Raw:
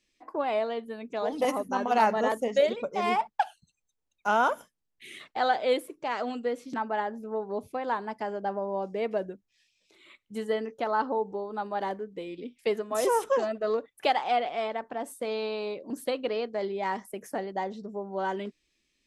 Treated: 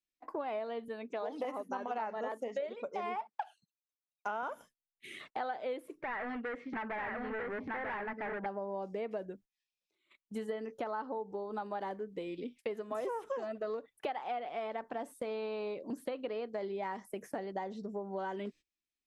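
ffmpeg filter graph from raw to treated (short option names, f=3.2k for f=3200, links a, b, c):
-filter_complex "[0:a]asettb=1/sr,asplit=3[a][b][c];[a]atrim=end=0.884[d];[b]atrim=start=0.88:end=4.43,asetpts=PTS-STARTPTS,afade=t=in:d=0.004:c=qsin,afade=t=out:st=3.546:d=0.004:c=qsin,highpass=260,highshelf=f=7.4k:g=-8.5[e];[c]atrim=start=4.426[f];[d][e]acrossfade=d=0.004:c1=hsin:c2=qsin[g];[g][f]acrossfade=d=0.004:c1=qsin:c2=hsin,asettb=1/sr,asplit=3[h][i][j];[h]atrim=end=6.014[k];[i]atrim=start=6.01:end=8.46,asetpts=PTS-STARTPTS,afade=t=in:d=0.004:c=qsin,afade=t=out:st=2.446:d=0.004:c=qsin,aecho=1:1:942:0.596,atrim=end_sample=108045,volume=35dB,asoftclip=hard,volume=-35dB,lowpass=f=1.9k:t=q:w=4.3[l];[j]atrim=start=8.456[m];[k][l]acrossfade=d=0.004:c1=hsin:c2=qsin[n];[n][m]acrossfade=d=0.004:c1=qsin:c2=hsin,acrossover=split=2800[o][p];[p]acompressor=threshold=-53dB:ratio=4:attack=1:release=60[q];[o][q]amix=inputs=2:normalize=0,agate=range=-22dB:threshold=-51dB:ratio=16:detection=peak,acompressor=threshold=-34dB:ratio=6,volume=-1dB"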